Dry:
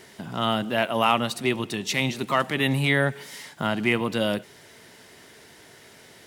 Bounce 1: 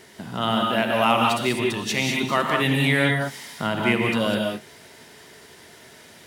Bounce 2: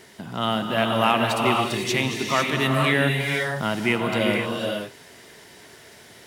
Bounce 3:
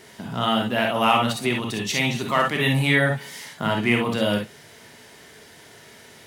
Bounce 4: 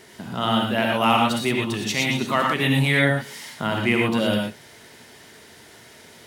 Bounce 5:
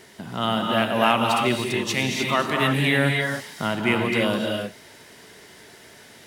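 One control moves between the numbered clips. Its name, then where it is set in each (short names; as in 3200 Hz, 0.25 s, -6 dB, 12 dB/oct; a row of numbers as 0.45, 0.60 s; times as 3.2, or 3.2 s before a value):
non-linear reverb, gate: 220, 530, 80, 140, 330 ms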